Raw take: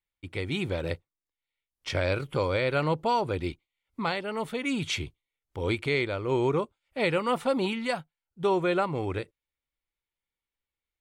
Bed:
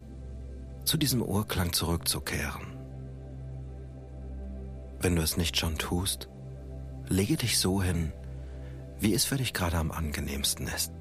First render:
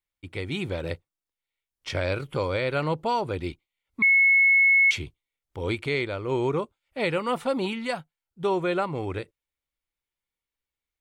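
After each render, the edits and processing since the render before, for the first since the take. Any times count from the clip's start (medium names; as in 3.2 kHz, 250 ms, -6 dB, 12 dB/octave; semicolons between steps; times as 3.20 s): 4.02–4.91 s: bleep 2.19 kHz -15 dBFS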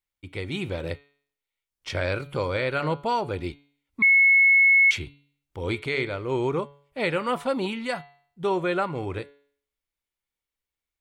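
de-hum 142.2 Hz, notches 31; dynamic bell 1.6 kHz, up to +4 dB, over -37 dBFS, Q 2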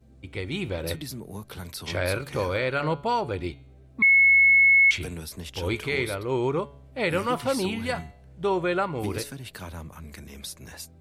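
add bed -9.5 dB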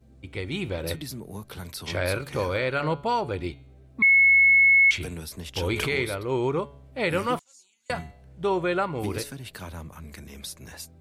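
5.56–6.05 s: swell ahead of each attack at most 21 dB/s; 7.39–7.90 s: band-pass filter 6.9 kHz, Q 19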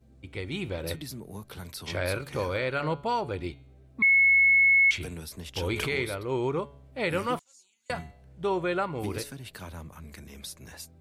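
trim -3 dB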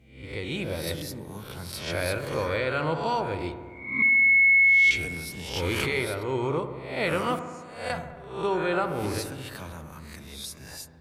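reverse spectral sustain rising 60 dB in 0.57 s; on a send: feedback echo behind a low-pass 68 ms, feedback 75%, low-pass 1.5 kHz, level -10 dB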